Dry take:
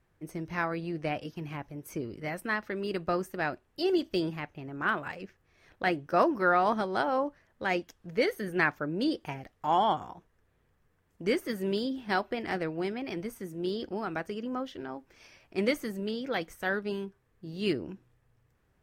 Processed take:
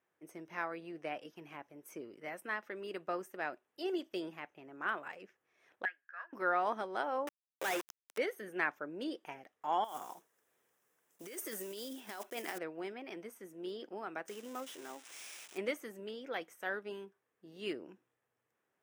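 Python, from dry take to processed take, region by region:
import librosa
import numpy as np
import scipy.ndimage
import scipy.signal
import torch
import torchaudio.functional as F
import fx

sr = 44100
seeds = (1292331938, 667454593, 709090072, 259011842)

y = fx.chain(x, sr, fx.ladder_bandpass(hz=1700.0, resonance_pct=90),
    fx.air_absorb(metres=66.0), at=(5.85, 6.33))
y = fx.chain(y, sr, fx.peak_eq(hz=200.0, db=-14.0, octaves=0.77),
    fx.quant_companded(bits=2), at=(7.27, 8.18))
y = fx.chain(y, sr, fx.block_float(bits=5),
    fx.bass_treble(bass_db=-3, treble_db=11),
    fx.over_compress(threshold_db=-34.0, ratio=-1.0), at=(9.84, 12.59))
y = fx.chain(y, sr, fx.crossing_spikes(level_db=-30.0),
    fx.lowpass(hz=11000.0, slope=12),
    fx.resample_bad(factor=3, down='none', up='hold'), at=(14.28, 15.58))
y = scipy.signal.sosfilt(scipy.signal.butter(2, 350.0, 'highpass', fs=sr, output='sos'), y)
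y = fx.peak_eq(y, sr, hz=4400.0, db=-10.0, octaves=0.29)
y = y * librosa.db_to_amplitude(-7.0)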